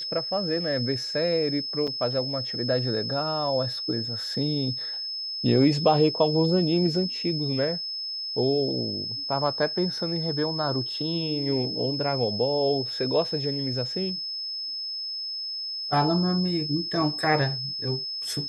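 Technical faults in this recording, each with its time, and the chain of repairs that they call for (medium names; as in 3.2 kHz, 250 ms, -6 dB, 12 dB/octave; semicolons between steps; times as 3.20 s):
whine 5.2 kHz -30 dBFS
1.87–1.88 s: dropout 5.8 ms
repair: band-stop 5.2 kHz, Q 30; interpolate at 1.87 s, 5.8 ms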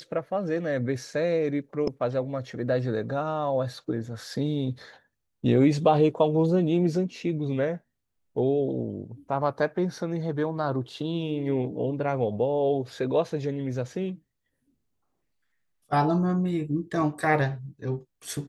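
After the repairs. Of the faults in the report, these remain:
nothing left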